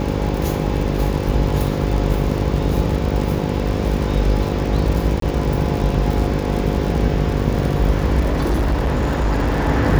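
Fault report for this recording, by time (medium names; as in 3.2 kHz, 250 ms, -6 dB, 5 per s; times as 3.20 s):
buzz 50 Hz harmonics 11 -22 dBFS
crackle 85 per s -23 dBFS
5.20–5.22 s: dropout 23 ms
8.20–9.69 s: clipped -14 dBFS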